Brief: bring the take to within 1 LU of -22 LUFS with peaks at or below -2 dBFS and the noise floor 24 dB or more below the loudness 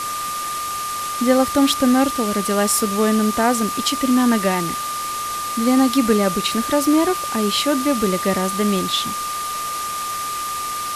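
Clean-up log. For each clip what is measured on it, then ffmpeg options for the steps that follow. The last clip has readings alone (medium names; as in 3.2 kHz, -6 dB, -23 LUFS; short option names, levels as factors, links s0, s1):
steady tone 1.2 kHz; tone level -24 dBFS; noise floor -26 dBFS; noise floor target -43 dBFS; loudness -19.0 LUFS; peak level -3.0 dBFS; loudness target -22.0 LUFS
-> -af "bandreject=f=1200:w=30"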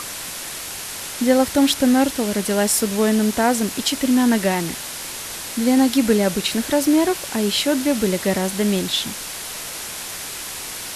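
steady tone not found; noise floor -31 dBFS; noise floor target -44 dBFS
-> -af "afftdn=nr=13:nf=-31"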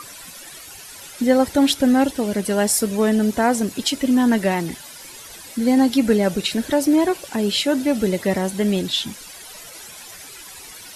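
noise floor -40 dBFS; noise floor target -44 dBFS
-> -af "afftdn=nr=6:nf=-40"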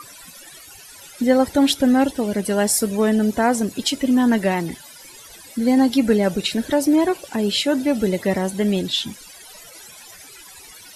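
noise floor -43 dBFS; noise floor target -44 dBFS
-> -af "afftdn=nr=6:nf=-43"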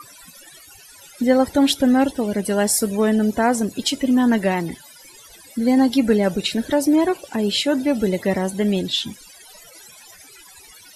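noise floor -46 dBFS; loudness -19.5 LUFS; peak level -4.0 dBFS; loudness target -22.0 LUFS
-> -af "volume=0.75"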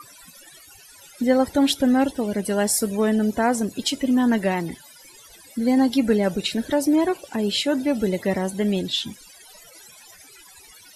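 loudness -22.0 LUFS; peak level -6.5 dBFS; noise floor -48 dBFS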